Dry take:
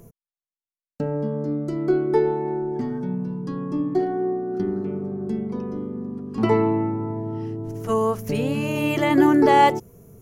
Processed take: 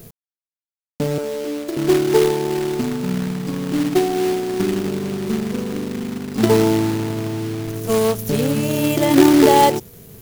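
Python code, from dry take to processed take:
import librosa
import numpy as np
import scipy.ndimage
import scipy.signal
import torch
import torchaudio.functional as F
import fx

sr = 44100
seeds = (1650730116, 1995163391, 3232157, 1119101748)

y = fx.high_shelf(x, sr, hz=9900.0, db=11.0)
y = fx.highpass(y, sr, hz=330.0, slope=24, at=(1.18, 1.77))
y = fx.band_shelf(y, sr, hz=1600.0, db=-9.0, octaves=1.7)
y = fx.quant_companded(y, sr, bits=4)
y = y * librosa.db_to_amplitude(4.5)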